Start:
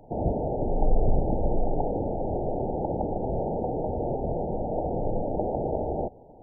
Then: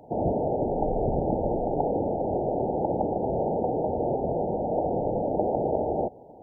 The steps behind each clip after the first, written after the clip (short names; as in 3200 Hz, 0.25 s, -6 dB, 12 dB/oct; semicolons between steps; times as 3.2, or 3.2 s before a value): HPF 180 Hz 6 dB/oct; gain +3.5 dB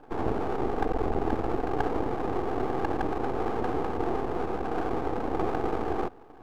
fixed phaser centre 590 Hz, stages 6; half-wave rectifier; gain +5.5 dB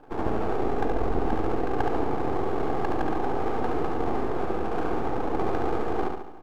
feedback echo 71 ms, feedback 51%, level -4 dB